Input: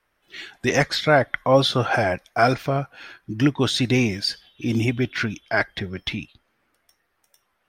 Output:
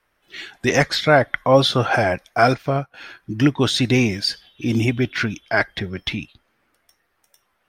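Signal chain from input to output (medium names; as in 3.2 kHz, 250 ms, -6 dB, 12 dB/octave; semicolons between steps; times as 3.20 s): 2.52–2.94 s: upward expansion 1.5:1, over -43 dBFS; trim +2.5 dB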